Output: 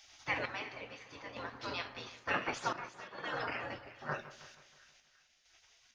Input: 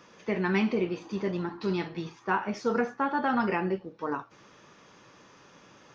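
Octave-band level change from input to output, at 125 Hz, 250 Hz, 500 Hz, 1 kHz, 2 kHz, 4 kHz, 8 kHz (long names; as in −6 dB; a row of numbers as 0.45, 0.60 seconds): −14.0 dB, −20.0 dB, −13.5 dB, −9.0 dB, −4.5 dB, −0.5 dB, can't be measured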